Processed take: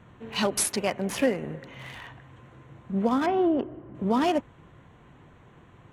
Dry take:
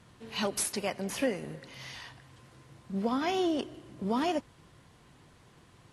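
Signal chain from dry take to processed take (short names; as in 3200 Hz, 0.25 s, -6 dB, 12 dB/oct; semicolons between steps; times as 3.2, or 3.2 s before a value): Wiener smoothing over 9 samples; 3.26–3.95 LPF 1400 Hz 12 dB/oct; gain +6 dB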